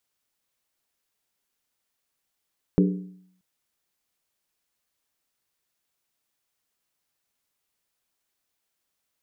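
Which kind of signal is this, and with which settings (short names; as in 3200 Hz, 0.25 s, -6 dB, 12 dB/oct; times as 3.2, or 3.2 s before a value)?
skin hit, lowest mode 184 Hz, decay 0.69 s, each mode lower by 4 dB, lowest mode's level -14.5 dB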